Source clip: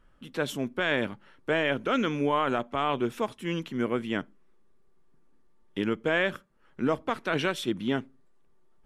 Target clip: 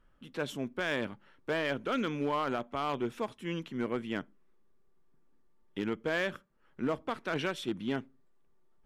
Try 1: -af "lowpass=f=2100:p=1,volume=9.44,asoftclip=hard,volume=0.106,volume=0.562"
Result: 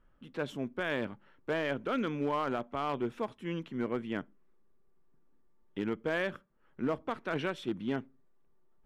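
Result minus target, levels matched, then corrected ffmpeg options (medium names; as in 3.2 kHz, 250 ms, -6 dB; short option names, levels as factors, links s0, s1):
8 kHz band -6.5 dB
-af "lowpass=f=7700:p=1,volume=9.44,asoftclip=hard,volume=0.106,volume=0.562"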